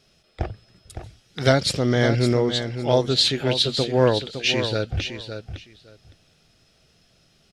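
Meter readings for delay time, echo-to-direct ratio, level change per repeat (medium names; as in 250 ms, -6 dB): 561 ms, -9.0 dB, -16.0 dB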